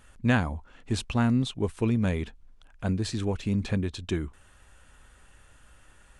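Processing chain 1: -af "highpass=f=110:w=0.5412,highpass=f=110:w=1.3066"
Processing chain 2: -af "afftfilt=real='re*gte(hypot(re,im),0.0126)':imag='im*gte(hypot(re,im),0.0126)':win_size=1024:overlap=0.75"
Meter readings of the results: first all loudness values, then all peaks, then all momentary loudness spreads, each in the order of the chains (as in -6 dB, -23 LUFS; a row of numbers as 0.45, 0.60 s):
-29.5, -28.5 LUFS; -7.5, -10.0 dBFS; 11, 10 LU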